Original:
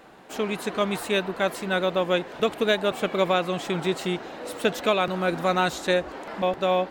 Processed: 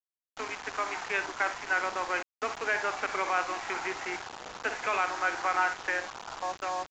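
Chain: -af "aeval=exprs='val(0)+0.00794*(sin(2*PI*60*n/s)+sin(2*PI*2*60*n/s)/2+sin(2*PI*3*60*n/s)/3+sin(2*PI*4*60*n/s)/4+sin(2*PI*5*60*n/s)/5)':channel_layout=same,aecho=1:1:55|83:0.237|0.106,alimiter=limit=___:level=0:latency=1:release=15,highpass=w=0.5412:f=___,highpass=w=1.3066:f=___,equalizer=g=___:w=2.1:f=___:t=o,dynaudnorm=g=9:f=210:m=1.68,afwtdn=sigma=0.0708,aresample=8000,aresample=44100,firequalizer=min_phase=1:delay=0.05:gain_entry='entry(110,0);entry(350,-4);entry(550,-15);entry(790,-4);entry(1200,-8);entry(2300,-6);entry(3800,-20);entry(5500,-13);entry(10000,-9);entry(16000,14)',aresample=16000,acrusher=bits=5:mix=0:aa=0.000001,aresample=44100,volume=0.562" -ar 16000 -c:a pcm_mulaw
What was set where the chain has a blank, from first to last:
0.178, 430, 430, 13, 1600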